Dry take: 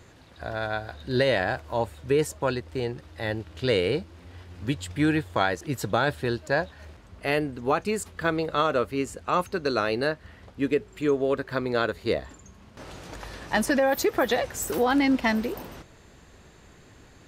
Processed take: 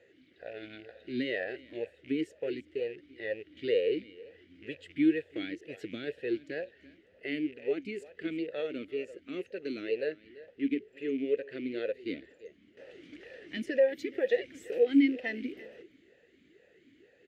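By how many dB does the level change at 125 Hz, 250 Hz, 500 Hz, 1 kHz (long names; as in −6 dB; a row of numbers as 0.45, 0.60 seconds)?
−20.5, −4.0, −6.0, −26.5 decibels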